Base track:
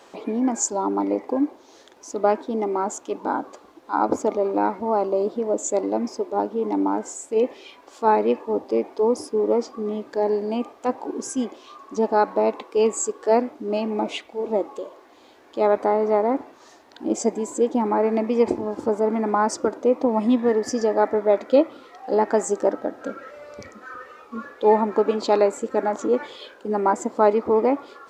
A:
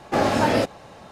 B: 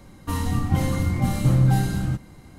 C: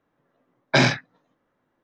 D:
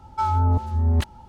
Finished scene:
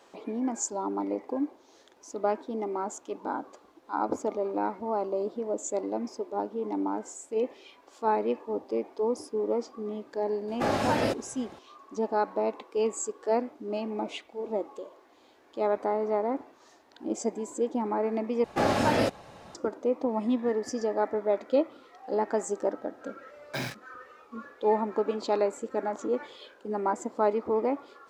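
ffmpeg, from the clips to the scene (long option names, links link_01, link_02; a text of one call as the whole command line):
ffmpeg -i bed.wav -i cue0.wav -i cue1.wav -i cue2.wav -filter_complex "[1:a]asplit=2[link_01][link_02];[0:a]volume=-8dB[link_03];[3:a]acrusher=bits=3:mix=0:aa=0.5[link_04];[link_03]asplit=2[link_05][link_06];[link_05]atrim=end=18.444[link_07];[link_02]atrim=end=1.11,asetpts=PTS-STARTPTS,volume=-4.5dB[link_08];[link_06]atrim=start=19.546[link_09];[link_01]atrim=end=1.11,asetpts=PTS-STARTPTS,volume=-6.5dB,afade=type=in:duration=0.004:curve=hsin,afade=type=out:start_time=1.106:duration=0.004:curve=hsin,adelay=10480[link_10];[link_04]atrim=end=1.83,asetpts=PTS-STARTPTS,volume=-16.5dB,afade=type=in:duration=0.004:curve=hsin,afade=type=out:start_time=1.826:duration=0.004:curve=hsin,adelay=22800[link_11];[link_07][link_08]acrossfade=duration=0.004:curve1=hsin:curve2=hsin[link_12];[link_12][link_09]acrossfade=duration=0.004:curve1=hsin:curve2=hsin[link_13];[link_13][link_10][link_11]amix=inputs=3:normalize=0" out.wav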